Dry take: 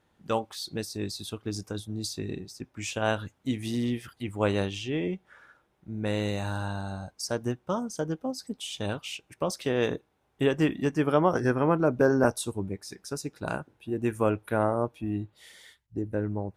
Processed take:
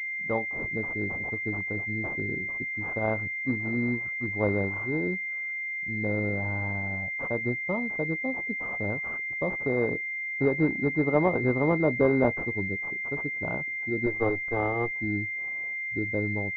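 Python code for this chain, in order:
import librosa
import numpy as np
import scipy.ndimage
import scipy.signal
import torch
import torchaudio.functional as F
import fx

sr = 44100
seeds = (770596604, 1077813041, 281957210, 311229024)

y = fx.lower_of_two(x, sr, delay_ms=2.5, at=(14.06, 14.91))
y = fx.pwm(y, sr, carrier_hz=2100.0)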